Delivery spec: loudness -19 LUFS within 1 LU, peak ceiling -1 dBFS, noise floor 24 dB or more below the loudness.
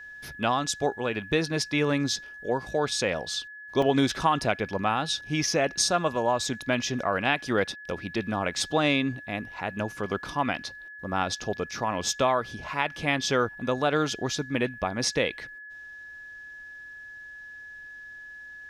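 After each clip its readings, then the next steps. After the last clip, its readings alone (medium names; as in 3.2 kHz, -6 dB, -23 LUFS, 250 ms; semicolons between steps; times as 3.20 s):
dropouts 1; longest dropout 3.3 ms; steady tone 1.7 kHz; tone level -41 dBFS; loudness -27.5 LUFS; peak level -8.5 dBFS; loudness target -19.0 LUFS
-> interpolate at 3.82 s, 3.3 ms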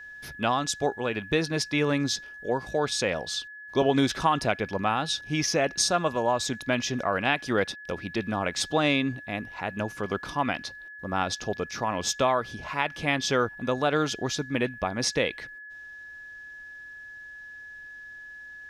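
dropouts 0; steady tone 1.7 kHz; tone level -41 dBFS
-> band-stop 1.7 kHz, Q 30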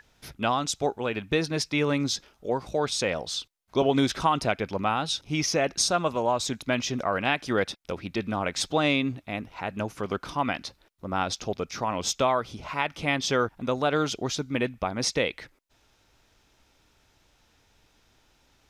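steady tone not found; loudness -27.5 LUFS; peak level -8.5 dBFS; loudness target -19.0 LUFS
-> trim +8.5 dB; peak limiter -1 dBFS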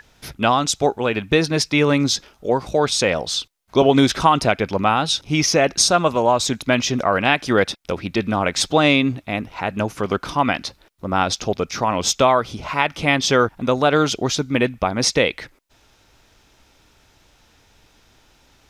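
loudness -19.0 LUFS; peak level -1.0 dBFS; noise floor -57 dBFS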